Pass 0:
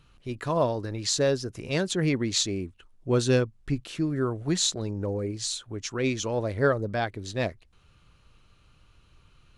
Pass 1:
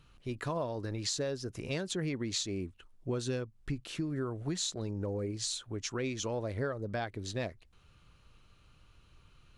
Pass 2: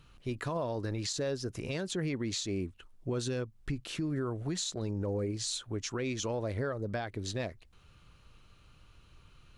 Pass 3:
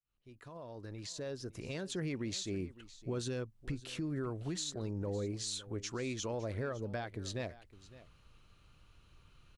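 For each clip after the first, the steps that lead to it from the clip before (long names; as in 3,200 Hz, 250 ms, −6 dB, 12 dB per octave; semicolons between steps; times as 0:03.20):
downward compressor 6 to 1, threshold −29 dBFS, peak gain reduction 11.5 dB; level −2.5 dB
brickwall limiter −28 dBFS, peak gain reduction 8.5 dB; level +2.5 dB
fade in at the beginning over 2.00 s; single-tap delay 560 ms −18 dB; level −4 dB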